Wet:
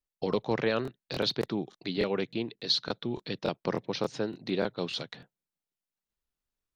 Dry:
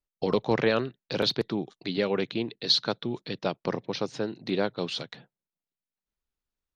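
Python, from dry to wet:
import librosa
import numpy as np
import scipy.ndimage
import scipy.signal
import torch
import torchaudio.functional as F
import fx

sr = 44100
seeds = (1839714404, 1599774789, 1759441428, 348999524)

p1 = fx.rider(x, sr, range_db=10, speed_s=0.5)
p2 = x + F.gain(torch.from_numpy(p1), -1.0).numpy()
p3 = fx.buffer_crackle(p2, sr, first_s=0.83, period_s=0.29, block=1024, kind='repeat')
y = F.gain(torch.from_numpy(p3), -8.5).numpy()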